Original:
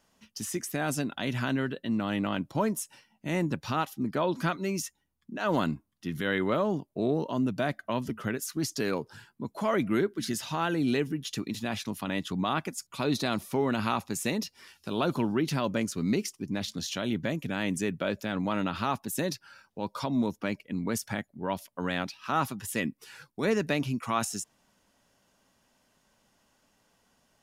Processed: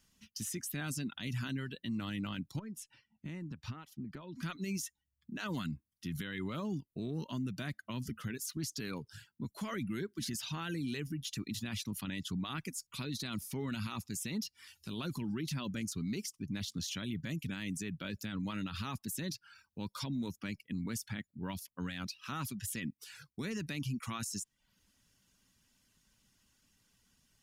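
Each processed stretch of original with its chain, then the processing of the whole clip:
0:02.59–0:04.43: low-pass filter 1,700 Hz 6 dB per octave + downward compressor 5 to 1, threshold −36 dBFS
whole clip: reverb reduction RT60 0.5 s; guitar amp tone stack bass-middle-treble 6-0-2; brickwall limiter −45.5 dBFS; level +15.5 dB

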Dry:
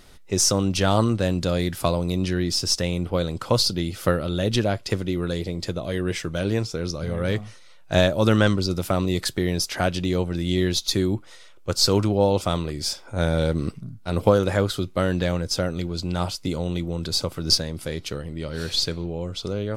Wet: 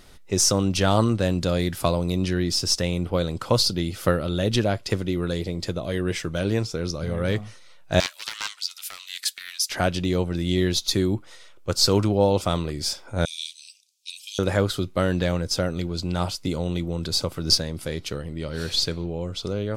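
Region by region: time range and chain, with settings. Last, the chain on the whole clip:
0:08.00–0:09.70: four-pole ladder high-pass 1,500 Hz, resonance 20% + spectral tilt +2.5 dB per octave + highs frequency-modulated by the lows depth 0.22 ms
0:13.25–0:14.39: Chebyshev high-pass with heavy ripple 2,400 Hz, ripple 3 dB + parametric band 5,700 Hz +12.5 dB 1.2 octaves + highs frequency-modulated by the lows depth 0.12 ms
whole clip: no processing

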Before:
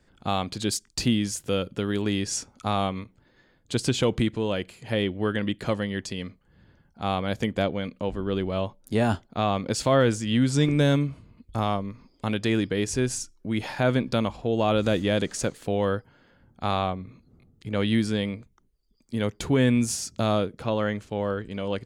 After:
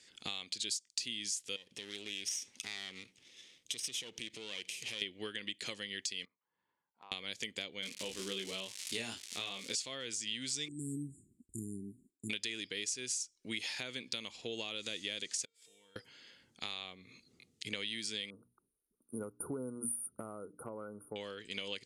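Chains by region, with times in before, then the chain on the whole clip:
0:01.56–0:05.02: lower of the sound and its delayed copy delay 0.34 ms + downward compressor 4 to 1, threshold −40 dBFS
0:06.25–0:07.12: resonant band-pass 980 Hz, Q 7.6 + spectral tilt −3 dB per octave + downward compressor 5 to 1, threshold −41 dBFS
0:07.82–0:09.74: double-tracking delay 26 ms −3 dB + surface crackle 390 per second −32 dBFS
0:10.68–0:12.30: linear-phase brick-wall band-stop 410–6,900 Hz + downward expander −52 dBFS
0:15.45–0:15.96: EQ curve with evenly spaced ripples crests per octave 1.7, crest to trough 8 dB + downward compressor 5 to 1, threshold −41 dBFS + tuned comb filter 460 Hz, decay 0.72 s, mix 90%
0:18.30–0:21.16: linear-phase brick-wall band-stop 1,500–9,000 Hz + mains-hum notches 60/120/180/240/300 Hz
whole clip: meter weighting curve ITU-R 468; downward compressor 8 to 1, threshold −37 dBFS; flat-topped bell 970 Hz −10.5 dB; level +1.5 dB

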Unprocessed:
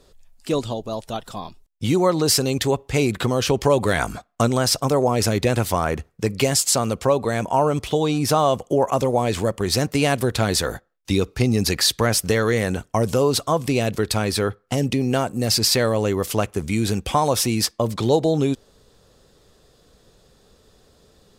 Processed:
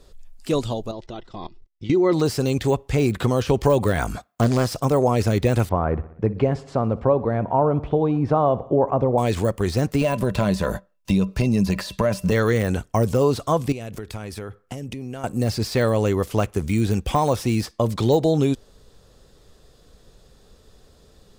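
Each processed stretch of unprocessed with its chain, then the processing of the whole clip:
0:00.91–0:02.13: low-pass filter 5,500 Hz 24 dB per octave + hollow resonant body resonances 350/2,000 Hz, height 13 dB, ringing for 55 ms + output level in coarse steps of 17 dB
0:04.17–0:04.80: high-pass filter 56 Hz 6 dB per octave + high-shelf EQ 11,000 Hz +9.5 dB + highs frequency-modulated by the lows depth 0.44 ms
0:05.69–0:09.18: low-pass filter 1,100 Hz + repeating echo 62 ms, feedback 60%, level −19 dB
0:10.01–0:12.32: parametric band 190 Hz +15 dB 0.3 octaves + hollow resonant body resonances 600/1,000/2,700 Hz, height 16 dB, ringing for 90 ms + downward compressor 4 to 1, threshold −17 dBFS
0:13.72–0:15.24: parametric band 4,200 Hz −5.5 dB 0.47 octaves + downward compressor 12 to 1, threshold −29 dBFS
whole clip: low-shelf EQ 67 Hz +9.5 dB; de-essing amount 70%

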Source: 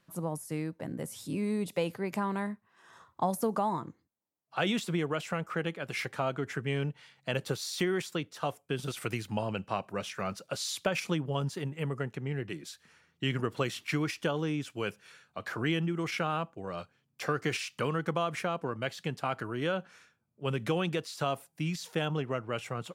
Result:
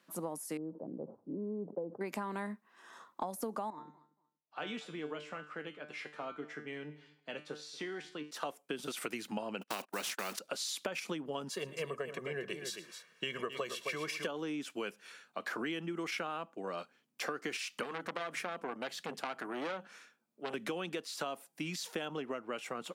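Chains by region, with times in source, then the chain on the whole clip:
0:00.57–0:02.01: Gaussian smoothing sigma 12 samples + parametric band 240 Hz −7 dB 0.72 octaves + level that may fall only so fast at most 140 dB per second
0:03.70–0:08.31: high-frequency loss of the air 84 metres + tuned comb filter 150 Hz, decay 0.4 s, mix 80% + repeating echo 234 ms, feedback 19%, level −22 dB
0:09.61–0:10.39: one scale factor per block 7 bits + noise gate −45 dBFS, range −39 dB + every bin compressed towards the loudest bin 2 to 1
0:11.50–0:14.27: comb filter 1.8 ms, depth 78% + multi-tap delay 112/266 ms −17/−9.5 dB
0:17.83–0:20.54: high-pass filter 120 Hz + mains-hum notches 50/100/150/200 Hz + saturating transformer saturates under 1,700 Hz
whole clip: Chebyshev high-pass filter 230 Hz, order 3; downward compressor, threshold −37 dBFS; level +2 dB

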